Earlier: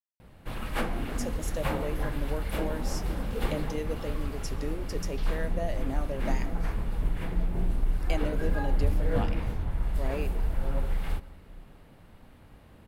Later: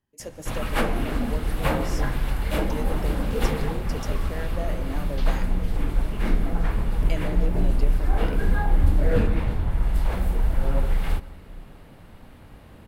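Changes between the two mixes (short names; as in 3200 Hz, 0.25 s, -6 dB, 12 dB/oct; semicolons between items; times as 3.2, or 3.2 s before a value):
speech: entry -1.00 s; background +6.5 dB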